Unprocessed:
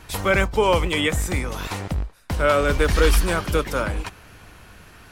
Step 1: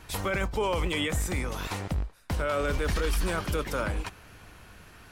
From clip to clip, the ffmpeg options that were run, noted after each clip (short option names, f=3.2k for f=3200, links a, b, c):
-af "alimiter=limit=-15dB:level=0:latency=1:release=15,volume=-4.5dB"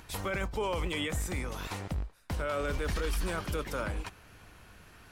-af "acompressor=mode=upward:threshold=-46dB:ratio=2.5,volume=-4.5dB"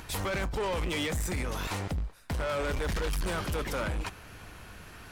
-af "asoftclip=type=tanh:threshold=-34.5dB,volume=7dB"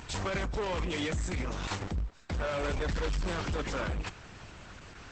-ar 48000 -c:a libopus -b:a 10k